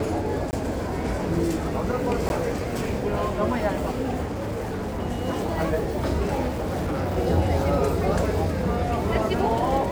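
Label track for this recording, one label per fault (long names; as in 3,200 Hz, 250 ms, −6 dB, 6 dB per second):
0.510000	0.530000	drop-out 19 ms
2.290000	2.300000	drop-out 11 ms
4.270000	5.010000	clipping −25.5 dBFS
6.470000	7.180000	clipping −23 dBFS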